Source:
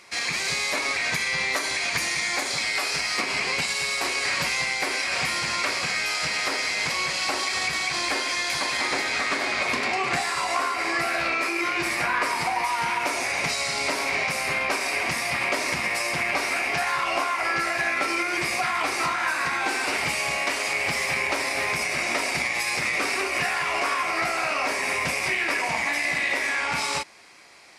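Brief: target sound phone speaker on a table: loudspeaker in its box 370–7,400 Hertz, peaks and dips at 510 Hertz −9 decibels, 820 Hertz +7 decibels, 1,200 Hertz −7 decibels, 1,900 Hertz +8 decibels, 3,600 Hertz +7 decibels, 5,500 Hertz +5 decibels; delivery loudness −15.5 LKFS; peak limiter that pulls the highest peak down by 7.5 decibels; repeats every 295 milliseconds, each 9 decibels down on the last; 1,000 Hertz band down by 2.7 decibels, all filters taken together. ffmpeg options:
ffmpeg -i in.wav -af "equalizer=frequency=1000:width_type=o:gain=-5,alimiter=limit=-19dB:level=0:latency=1,highpass=frequency=370:width=0.5412,highpass=frequency=370:width=1.3066,equalizer=frequency=510:width_type=q:width=4:gain=-9,equalizer=frequency=820:width_type=q:width=4:gain=7,equalizer=frequency=1200:width_type=q:width=4:gain=-7,equalizer=frequency=1900:width_type=q:width=4:gain=8,equalizer=frequency=3600:width_type=q:width=4:gain=7,equalizer=frequency=5500:width_type=q:width=4:gain=5,lowpass=frequency=7400:width=0.5412,lowpass=frequency=7400:width=1.3066,aecho=1:1:295|590|885|1180:0.355|0.124|0.0435|0.0152,volume=7dB" out.wav

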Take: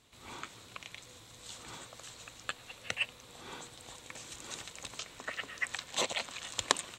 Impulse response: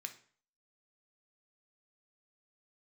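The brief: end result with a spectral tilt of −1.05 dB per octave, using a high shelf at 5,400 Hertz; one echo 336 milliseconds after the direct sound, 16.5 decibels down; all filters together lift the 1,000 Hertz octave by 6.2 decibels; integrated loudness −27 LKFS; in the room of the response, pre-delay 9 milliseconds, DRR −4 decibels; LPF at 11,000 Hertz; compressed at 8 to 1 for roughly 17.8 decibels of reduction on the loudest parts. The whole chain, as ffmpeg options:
-filter_complex "[0:a]lowpass=11000,equalizer=frequency=1000:width_type=o:gain=7.5,highshelf=frequency=5400:gain=-7,acompressor=threshold=-39dB:ratio=8,aecho=1:1:336:0.15,asplit=2[link_01][link_02];[1:a]atrim=start_sample=2205,adelay=9[link_03];[link_02][link_03]afir=irnorm=-1:irlink=0,volume=7dB[link_04];[link_01][link_04]amix=inputs=2:normalize=0,volume=13.5dB"

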